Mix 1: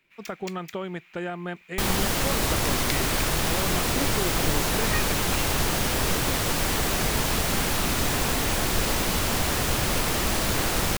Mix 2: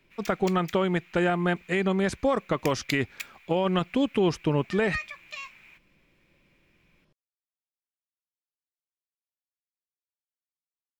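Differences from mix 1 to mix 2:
speech +7.5 dB; second sound: muted; master: add bass shelf 63 Hz +9 dB

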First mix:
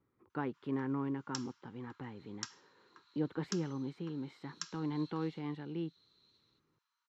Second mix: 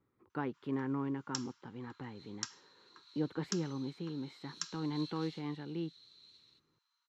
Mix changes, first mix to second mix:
second sound +8.0 dB; master: add treble shelf 6.1 kHz +6 dB

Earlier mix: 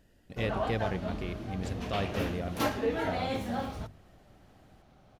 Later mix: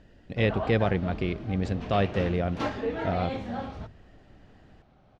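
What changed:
speech +9.0 dB; master: add distance through air 140 m

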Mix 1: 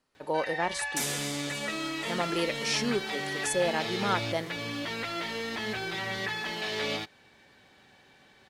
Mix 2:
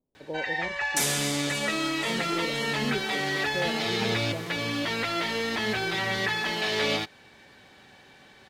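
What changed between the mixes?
speech: add Gaussian low-pass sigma 14 samples; background +5.5 dB

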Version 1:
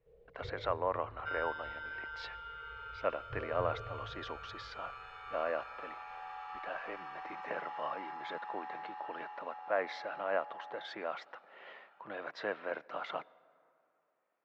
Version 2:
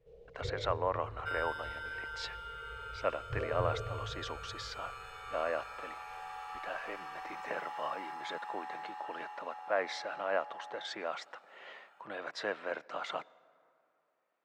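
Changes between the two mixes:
first sound +6.0 dB; master: remove distance through air 200 m

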